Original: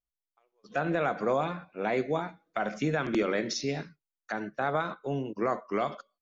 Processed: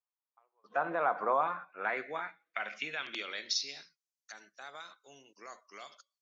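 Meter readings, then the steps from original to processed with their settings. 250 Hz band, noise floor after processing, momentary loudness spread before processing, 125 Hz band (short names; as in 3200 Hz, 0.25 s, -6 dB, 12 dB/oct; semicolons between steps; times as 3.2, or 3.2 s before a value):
-18.0 dB, under -85 dBFS, 8 LU, -23.0 dB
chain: band-pass sweep 1000 Hz -> 6000 Hz, 1.29–4.09; gain +5.5 dB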